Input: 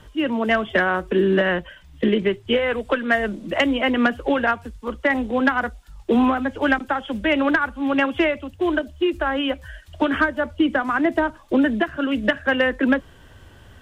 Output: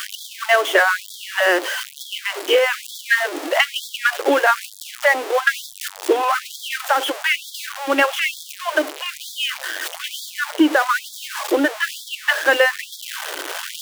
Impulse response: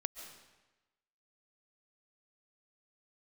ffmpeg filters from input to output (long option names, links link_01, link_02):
-af "aeval=exprs='val(0)+0.5*0.0708*sgn(val(0))':channel_layout=same,afftfilt=real='re*gte(b*sr/1024,260*pow(3300/260,0.5+0.5*sin(2*PI*1.1*pts/sr)))':imag='im*gte(b*sr/1024,260*pow(3300/260,0.5+0.5*sin(2*PI*1.1*pts/sr)))':win_size=1024:overlap=0.75,volume=3.5dB"